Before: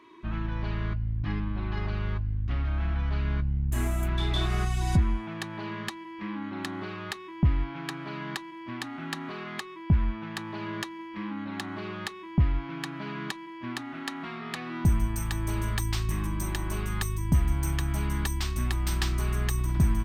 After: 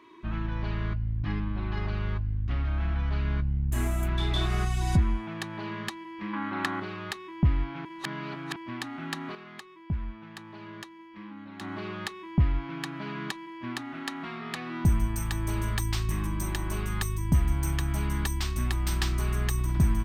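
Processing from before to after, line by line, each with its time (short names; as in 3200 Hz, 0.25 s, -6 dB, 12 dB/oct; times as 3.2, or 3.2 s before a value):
6.33–6.8 bell 1300 Hz +9.5 dB 2 oct
7.85–8.56 reverse
9.35–11.61 gain -8.5 dB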